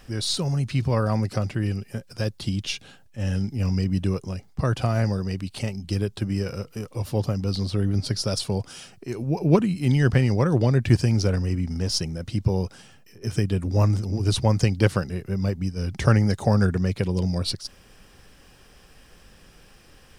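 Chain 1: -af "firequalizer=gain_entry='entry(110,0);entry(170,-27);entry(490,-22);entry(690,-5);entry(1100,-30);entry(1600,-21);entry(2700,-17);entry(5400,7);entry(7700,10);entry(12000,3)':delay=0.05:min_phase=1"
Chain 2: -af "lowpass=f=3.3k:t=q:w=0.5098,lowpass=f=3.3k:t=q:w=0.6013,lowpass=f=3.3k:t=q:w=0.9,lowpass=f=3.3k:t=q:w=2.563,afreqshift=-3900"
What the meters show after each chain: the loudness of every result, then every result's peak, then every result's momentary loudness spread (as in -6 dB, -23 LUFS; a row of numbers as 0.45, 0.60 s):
-27.5, -20.0 LUFS; -7.0, -4.0 dBFS; 12, 12 LU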